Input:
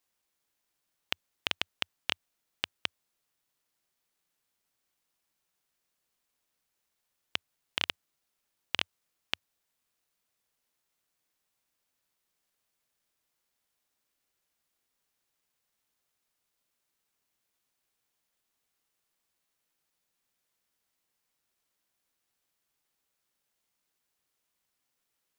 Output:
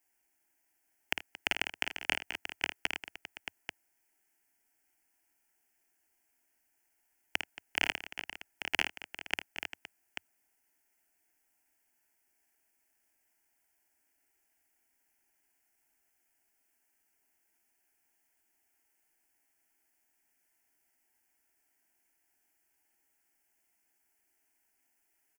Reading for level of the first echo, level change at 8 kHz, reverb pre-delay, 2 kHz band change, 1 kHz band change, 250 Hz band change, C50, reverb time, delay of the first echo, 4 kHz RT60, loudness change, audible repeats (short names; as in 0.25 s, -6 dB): -7.0 dB, +3.5 dB, none, +5.0 dB, +3.0 dB, +4.0 dB, none, none, 53 ms, none, 0.0 dB, 5